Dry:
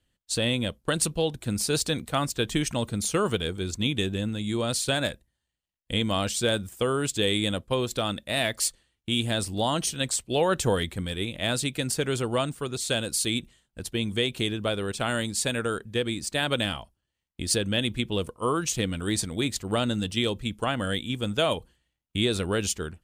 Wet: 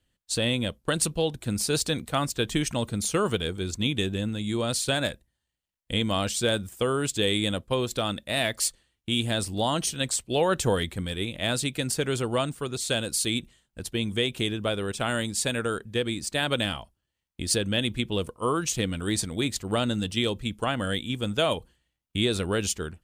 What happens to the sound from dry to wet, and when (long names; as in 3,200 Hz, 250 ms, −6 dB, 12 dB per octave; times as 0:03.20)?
0:14.09–0:15.38: notch filter 4,300 Hz